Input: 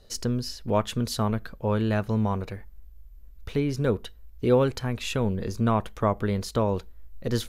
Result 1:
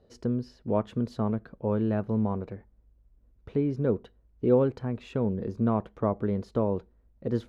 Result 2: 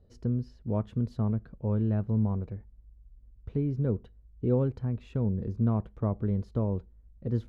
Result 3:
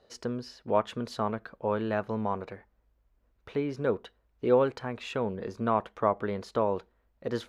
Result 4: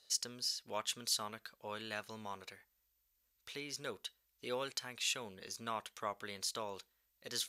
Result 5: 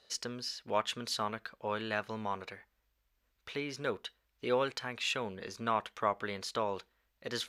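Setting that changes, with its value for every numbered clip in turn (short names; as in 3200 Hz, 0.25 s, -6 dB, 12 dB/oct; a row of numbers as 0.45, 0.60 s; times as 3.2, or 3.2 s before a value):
band-pass, frequency: 290, 110, 820, 7100, 2500 Hz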